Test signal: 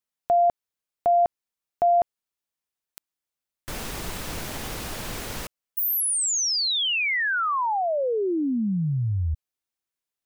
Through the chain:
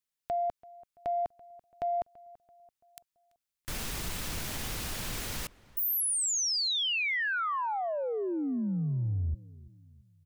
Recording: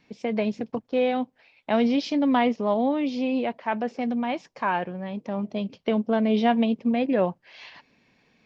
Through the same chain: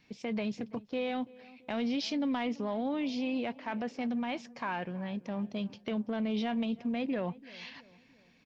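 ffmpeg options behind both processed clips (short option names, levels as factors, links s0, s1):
-filter_complex "[0:a]equalizer=f=550:w=0.43:g=-6.5,acompressor=threshold=0.0398:ratio=6:attack=1.1:release=29:knee=6:detection=rms,asplit=2[s0][s1];[s1]adelay=335,lowpass=f=2100:p=1,volume=0.0944,asplit=2[s2][s3];[s3]adelay=335,lowpass=f=2100:p=1,volume=0.48,asplit=2[s4][s5];[s5]adelay=335,lowpass=f=2100:p=1,volume=0.48,asplit=2[s6][s7];[s7]adelay=335,lowpass=f=2100:p=1,volume=0.48[s8];[s0][s2][s4][s6][s8]amix=inputs=5:normalize=0"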